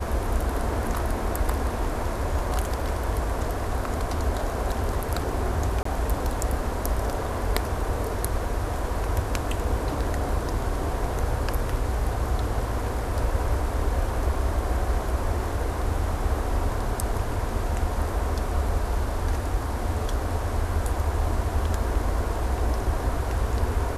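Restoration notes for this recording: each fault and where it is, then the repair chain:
5.83–5.85 s: dropout 24 ms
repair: interpolate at 5.83 s, 24 ms

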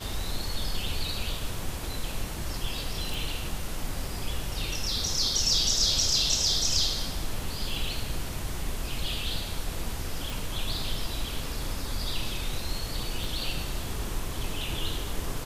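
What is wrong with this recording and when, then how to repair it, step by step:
3.14 s: pop
10.30 s: pop
13.24 s: pop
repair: de-click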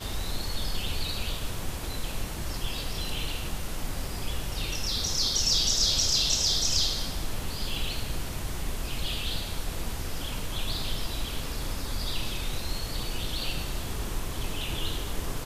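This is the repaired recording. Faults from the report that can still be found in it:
13.24 s: pop

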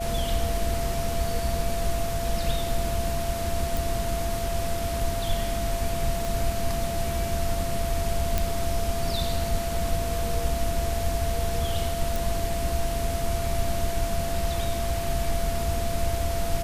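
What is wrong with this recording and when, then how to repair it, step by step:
whine 680 Hz -30 dBFS
3.77 s: pop
6.25 s: pop
8.38 s: pop
12.16 s: pop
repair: de-click; band-stop 680 Hz, Q 30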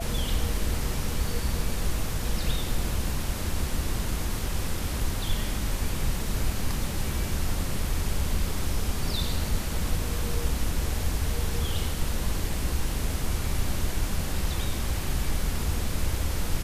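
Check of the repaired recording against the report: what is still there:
6.25 s: pop

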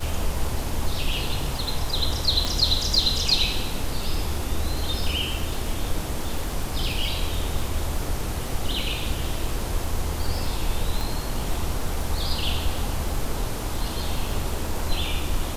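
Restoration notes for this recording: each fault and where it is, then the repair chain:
crackle 49 per s -29 dBFS
2.45 s: pop
11.01 s: pop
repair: de-click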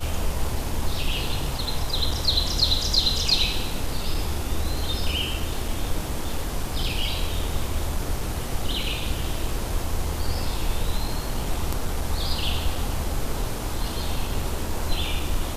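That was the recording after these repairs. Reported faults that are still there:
11.01 s: pop

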